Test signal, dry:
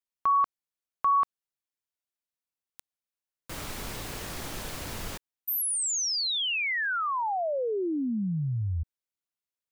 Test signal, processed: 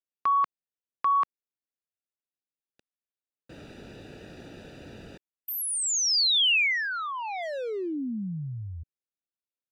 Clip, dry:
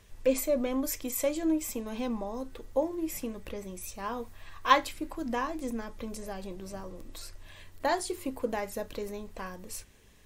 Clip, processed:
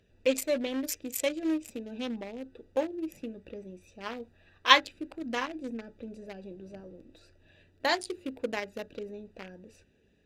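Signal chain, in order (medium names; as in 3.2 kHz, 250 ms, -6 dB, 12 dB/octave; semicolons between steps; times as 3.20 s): local Wiener filter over 41 samples; frequency weighting D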